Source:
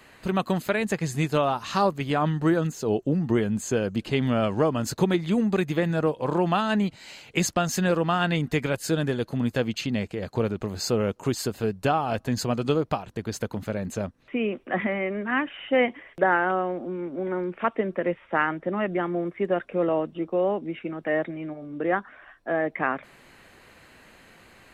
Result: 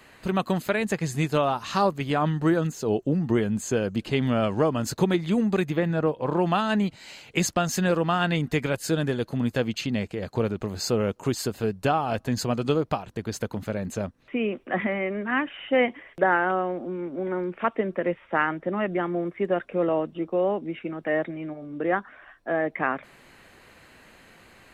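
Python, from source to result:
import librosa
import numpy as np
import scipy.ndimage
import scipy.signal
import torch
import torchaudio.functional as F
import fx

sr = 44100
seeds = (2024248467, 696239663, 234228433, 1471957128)

y = fx.peak_eq(x, sr, hz=8800.0, db=-9.5, octaves=1.9, at=(5.7, 6.39))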